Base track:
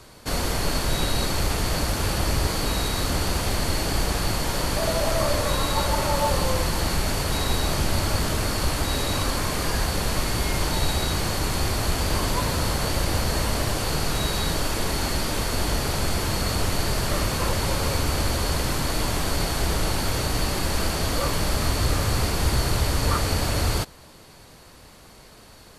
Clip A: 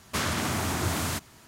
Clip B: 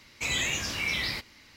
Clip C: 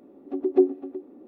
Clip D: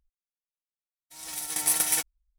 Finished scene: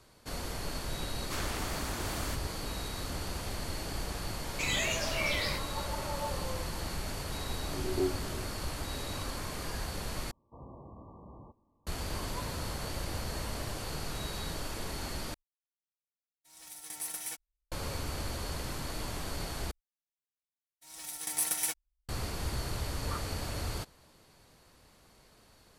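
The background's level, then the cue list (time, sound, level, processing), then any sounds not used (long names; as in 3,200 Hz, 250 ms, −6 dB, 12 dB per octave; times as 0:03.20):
base track −13 dB
0:01.17: mix in A −9.5 dB + Butterworth high-pass 230 Hz
0:04.38: mix in B −3.5 dB
0:07.43: mix in C −15.5 dB + every bin's largest magnitude spread in time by 60 ms
0:10.31: overwrite with B −10.5 dB + linear-phase brick-wall low-pass 1,200 Hz
0:15.34: overwrite with D −13 dB + soft clipping −15.5 dBFS
0:19.71: overwrite with D −7 dB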